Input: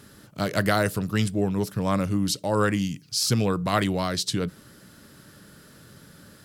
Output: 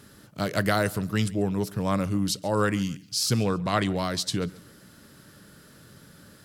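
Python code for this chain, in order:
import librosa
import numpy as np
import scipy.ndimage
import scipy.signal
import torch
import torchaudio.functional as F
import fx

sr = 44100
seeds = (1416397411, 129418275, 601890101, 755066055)

y = fx.lowpass(x, sr, hz=8400.0, slope=12, at=(3.43, 3.96))
y = fx.echo_feedback(y, sr, ms=138, feedback_pct=35, wet_db=-22.5)
y = F.gain(torch.from_numpy(y), -1.5).numpy()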